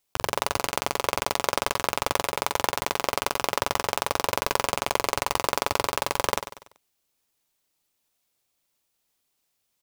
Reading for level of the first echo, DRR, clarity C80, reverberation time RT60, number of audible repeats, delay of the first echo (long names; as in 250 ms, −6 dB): −11.0 dB, no reverb audible, no reverb audible, no reverb audible, 4, 96 ms